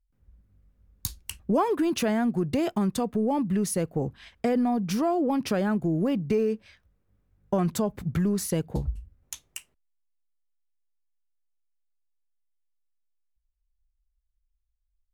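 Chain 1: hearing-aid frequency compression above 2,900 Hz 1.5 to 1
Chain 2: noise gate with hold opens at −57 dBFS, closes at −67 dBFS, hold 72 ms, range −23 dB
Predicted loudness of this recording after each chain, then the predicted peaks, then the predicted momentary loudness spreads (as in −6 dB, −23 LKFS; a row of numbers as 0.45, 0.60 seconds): −27.0, −27.0 LKFS; −14.0, −12.5 dBFS; 13, 12 LU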